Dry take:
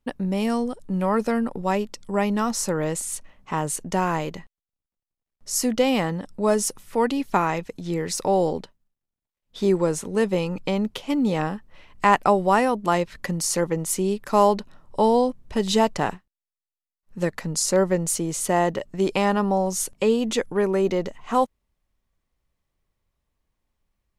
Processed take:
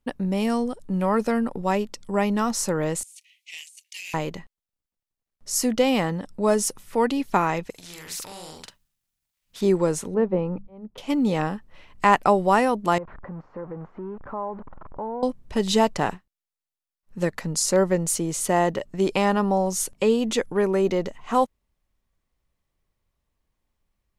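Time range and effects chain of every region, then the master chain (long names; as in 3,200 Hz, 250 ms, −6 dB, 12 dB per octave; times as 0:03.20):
0:03.03–0:04.14: Butterworth high-pass 2,200 Hz 72 dB per octave + compressor whose output falls as the input rises −43 dBFS + highs frequency-modulated by the lows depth 0.66 ms
0:07.70–0:09.61: guitar amp tone stack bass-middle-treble 5-5-5 + double-tracking delay 45 ms −2.5 dB + every bin compressed towards the loudest bin 2 to 1
0:10.14–0:10.98: low-pass filter 1,100 Hz + volume swells 763 ms + mains-hum notches 50/100/150/200 Hz
0:12.98–0:15.23: converter with a step at zero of −27.5 dBFS + downward compressor 2 to 1, threshold −28 dBFS + transistor ladder low-pass 1,400 Hz, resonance 35%
whole clip: no processing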